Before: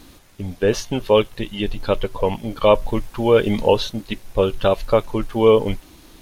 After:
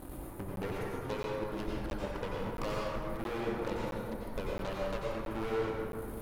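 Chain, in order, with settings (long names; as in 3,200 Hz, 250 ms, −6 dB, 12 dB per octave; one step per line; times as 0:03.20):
drawn EQ curve 860 Hz 0 dB, 5,700 Hz −24 dB, 9,900 Hz −2 dB
downward compressor 12 to 1, threshold −34 dBFS, peak gain reduction 25 dB
asymmetric clip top −45 dBFS, bottom −28 dBFS
harmonic generator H 6 −11 dB, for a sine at −27.5 dBFS
dense smooth reverb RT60 2.1 s, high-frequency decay 0.45×, pre-delay 80 ms, DRR −4.5 dB
regular buffer underruns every 0.67 s, samples 512, zero, from 0:00.56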